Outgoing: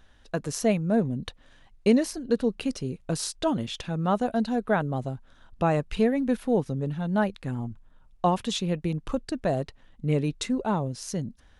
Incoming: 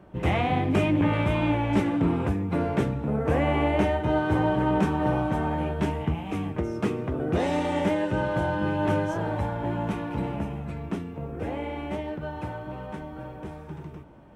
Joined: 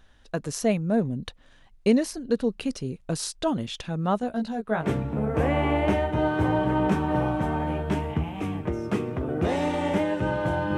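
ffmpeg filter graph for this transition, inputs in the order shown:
ffmpeg -i cue0.wav -i cue1.wav -filter_complex "[0:a]asettb=1/sr,asplit=3[link_01][link_02][link_03];[link_01]atrim=end=4.194[link_04];[link_02]atrim=start=4.19:end=4.9,asetpts=PTS-STARTPTS,afade=type=in:duration=0.004:curve=qsin,afade=type=out:start_time=0.706:duration=0.004:curve=qsin,flanger=delay=16.5:depth=3:speed=0.57[link_05];[link_03]atrim=start=4.896[link_06];[link_04][link_05]acrossfade=duration=0.004:curve1=hsin:curve2=qsin[link_07];[link_07][link_06]acrossfade=duration=0.004:curve1=qsin:curve2=hsin,apad=whole_dur=10.77,atrim=end=10.77,atrim=end=4.9,asetpts=PTS-STARTPTS[link_08];[1:a]atrim=start=2.71:end=8.68,asetpts=PTS-STARTPTS[link_09];[link_08][link_09]acrossfade=duration=0.1:curve1=tri:curve2=tri" out.wav

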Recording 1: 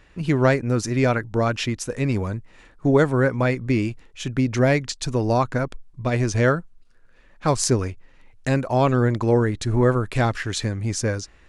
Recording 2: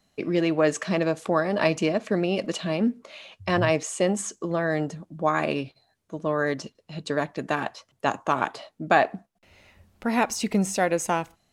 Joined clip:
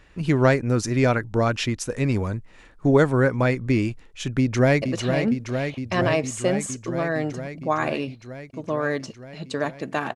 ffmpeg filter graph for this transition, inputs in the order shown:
ffmpeg -i cue0.wav -i cue1.wav -filter_complex "[0:a]apad=whole_dur=10.15,atrim=end=10.15,atrim=end=4.822[link_01];[1:a]atrim=start=2.378:end=7.71[link_02];[link_01][link_02]acrossfade=duration=0.004:curve1=hsin:curve2=hsin,asplit=2[link_03][link_04];[link_04]afade=type=in:start_time=4.39:duration=0.01,afade=type=out:start_time=4.82:duration=0.01,aecho=0:1:460|920|1380|1840|2300|2760|3220|3680|4140|4600|5060|5520:0.501187|0.40095|0.32076|0.256608|0.205286|0.164229|0.131383|0.105107|0.0840853|0.0672682|0.0538146|0.0430517[link_05];[link_03][link_05]amix=inputs=2:normalize=0" out.wav

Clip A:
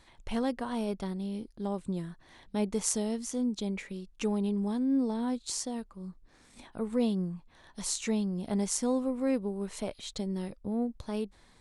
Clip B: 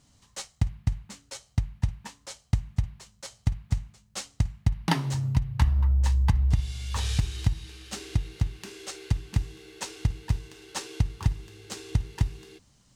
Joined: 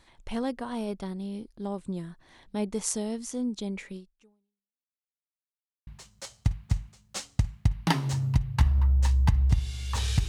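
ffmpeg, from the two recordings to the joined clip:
ffmpeg -i cue0.wav -i cue1.wav -filter_complex "[0:a]apad=whole_dur=10.28,atrim=end=10.28,asplit=2[link_01][link_02];[link_01]atrim=end=4.93,asetpts=PTS-STARTPTS,afade=type=out:start_time=3.96:duration=0.97:curve=exp[link_03];[link_02]atrim=start=4.93:end=5.87,asetpts=PTS-STARTPTS,volume=0[link_04];[1:a]atrim=start=2.88:end=7.29,asetpts=PTS-STARTPTS,afade=type=in:duration=0.004:curve=hsin[link_05];[link_03][link_04][link_05]concat=n=3:v=0:a=1" out.wav

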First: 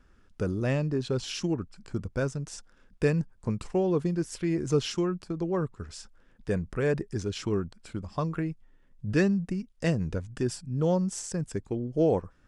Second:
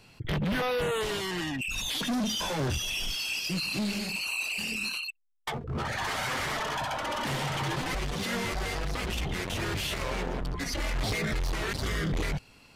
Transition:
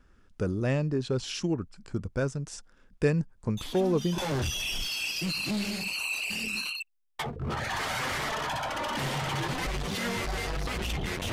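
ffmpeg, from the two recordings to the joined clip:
ffmpeg -i cue0.wav -i cue1.wav -filter_complex "[1:a]asplit=2[link_01][link_02];[0:a]apad=whole_dur=11.32,atrim=end=11.32,atrim=end=4.182[link_03];[link_02]atrim=start=2.458:end=9.6[link_04];[link_01]atrim=start=1.85:end=2.46,asetpts=PTS-STARTPTS,volume=-10dB,afade=type=in:duration=0.004:curve=hsin,afade=type=out:start_time=0.606:duration=0.004:curve=hsin,adelay=157437S[link_05];[link_03][link_04]acrossfade=duration=0.004:curve1=hsin:curve2=hsin[link_06];[link_06][link_05]amix=inputs=2:normalize=0" out.wav

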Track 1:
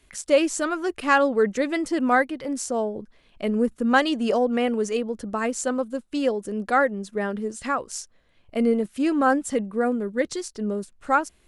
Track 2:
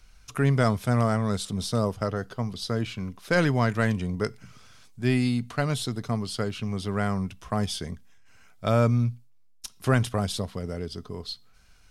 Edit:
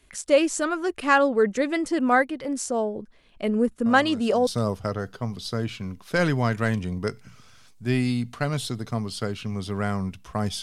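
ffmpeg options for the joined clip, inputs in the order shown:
ffmpeg -i cue0.wav -i cue1.wav -filter_complex "[1:a]asplit=2[link_01][link_02];[0:a]apad=whole_dur=10.62,atrim=end=10.62,atrim=end=4.472[link_03];[link_02]atrim=start=1.638:end=7.79[link_04];[link_01]atrim=start=1.03:end=1.64,asetpts=PTS-STARTPTS,volume=-13.5dB,afade=type=in:duration=0.004:curve=hsin,afade=type=out:start_time=0.606:duration=0.004:curve=hsin,adelay=3860[link_05];[link_03][link_04]acrossfade=duration=0.004:curve1=hsin:curve2=hsin[link_06];[link_06][link_05]amix=inputs=2:normalize=0" out.wav

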